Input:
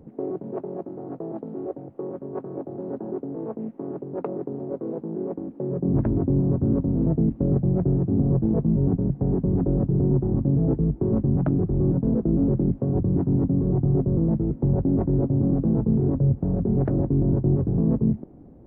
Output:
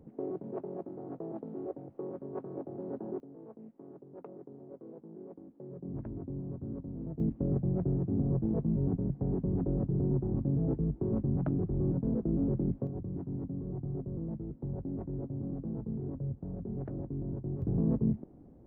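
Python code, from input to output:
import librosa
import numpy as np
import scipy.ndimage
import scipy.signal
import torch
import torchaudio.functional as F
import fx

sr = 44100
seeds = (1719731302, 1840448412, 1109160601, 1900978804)

y = fx.gain(x, sr, db=fx.steps((0.0, -7.5), (3.2, -18.0), (7.2, -9.0), (12.87, -16.0), (17.62, -7.5)))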